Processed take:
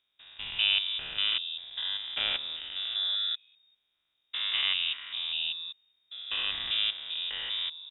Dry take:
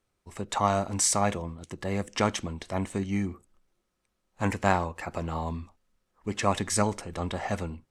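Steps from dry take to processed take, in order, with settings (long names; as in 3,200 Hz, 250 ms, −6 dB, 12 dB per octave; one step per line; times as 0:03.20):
spectrum averaged block by block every 200 ms
voice inversion scrambler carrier 3,700 Hz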